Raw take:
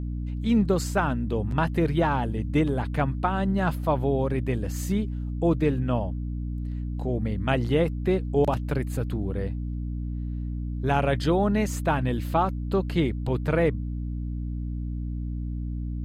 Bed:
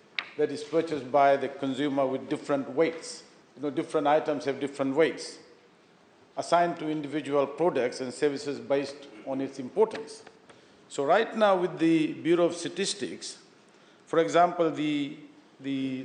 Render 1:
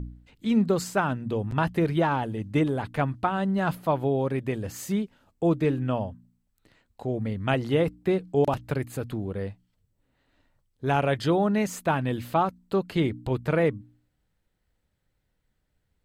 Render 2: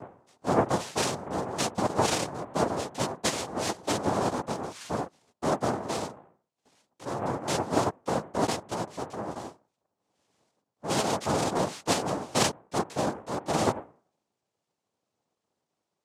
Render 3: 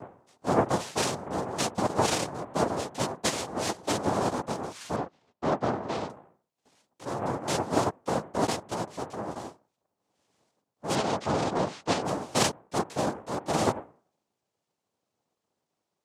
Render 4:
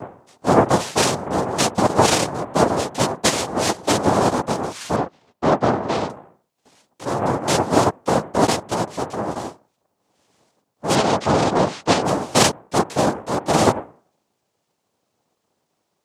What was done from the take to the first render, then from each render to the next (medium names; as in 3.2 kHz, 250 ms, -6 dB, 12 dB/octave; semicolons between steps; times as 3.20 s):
de-hum 60 Hz, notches 5
chorus voices 4, 0.3 Hz, delay 15 ms, depth 4.5 ms; noise-vocoded speech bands 2
4.96–6.10 s: low-pass 3.9 kHz; 10.95–12.05 s: distance through air 86 m
trim +10 dB; peak limiter -1 dBFS, peak gain reduction 2 dB